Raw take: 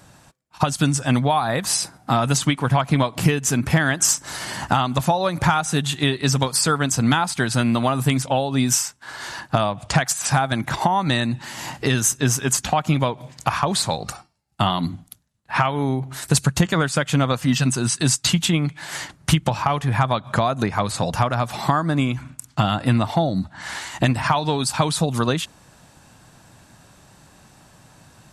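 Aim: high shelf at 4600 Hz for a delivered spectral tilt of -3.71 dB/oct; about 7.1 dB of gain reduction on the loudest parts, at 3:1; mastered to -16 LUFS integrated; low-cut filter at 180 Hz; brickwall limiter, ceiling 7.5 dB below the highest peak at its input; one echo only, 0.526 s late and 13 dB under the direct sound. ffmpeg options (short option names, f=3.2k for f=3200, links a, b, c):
-af "highpass=180,highshelf=f=4.6k:g=-4.5,acompressor=threshold=-25dB:ratio=3,alimiter=limit=-17dB:level=0:latency=1,aecho=1:1:526:0.224,volume=13.5dB"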